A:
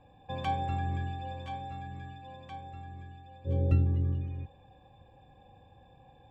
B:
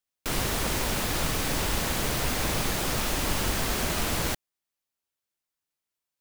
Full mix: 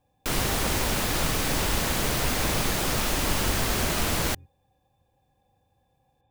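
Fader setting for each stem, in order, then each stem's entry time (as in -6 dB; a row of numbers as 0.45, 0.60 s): -12.0, +2.0 dB; 0.00, 0.00 s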